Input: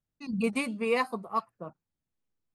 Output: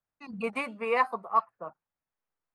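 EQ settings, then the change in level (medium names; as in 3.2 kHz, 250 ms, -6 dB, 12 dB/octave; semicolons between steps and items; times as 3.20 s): three-band isolator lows -16 dB, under 580 Hz, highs -17 dB, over 2.1 kHz; +6.5 dB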